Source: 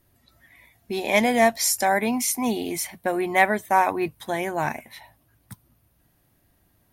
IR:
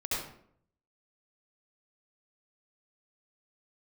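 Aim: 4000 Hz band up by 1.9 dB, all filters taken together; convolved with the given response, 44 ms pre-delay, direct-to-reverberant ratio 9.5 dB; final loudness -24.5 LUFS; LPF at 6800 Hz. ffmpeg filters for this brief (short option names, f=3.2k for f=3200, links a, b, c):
-filter_complex "[0:a]lowpass=6.8k,equalizer=f=4k:t=o:g=3.5,asplit=2[a][b];[1:a]atrim=start_sample=2205,adelay=44[c];[b][c]afir=irnorm=-1:irlink=0,volume=-15.5dB[d];[a][d]amix=inputs=2:normalize=0,volume=-2dB"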